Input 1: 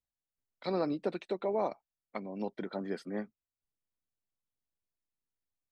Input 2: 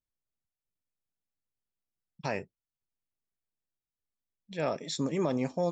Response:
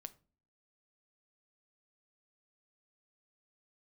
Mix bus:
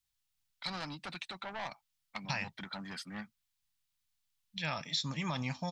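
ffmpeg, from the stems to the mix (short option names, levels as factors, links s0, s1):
-filter_complex "[0:a]asoftclip=type=tanh:threshold=0.0316,volume=1.26[s0];[1:a]lowpass=f=5400:w=0.5412,lowpass=f=5400:w=1.3066,adelay=50,volume=1.26[s1];[s0][s1]amix=inputs=2:normalize=0,firequalizer=gain_entry='entry(140,0);entry(400,-22);entry(840,-1);entry(3200,8)':delay=0.05:min_phase=1,acompressor=threshold=0.0251:ratio=3"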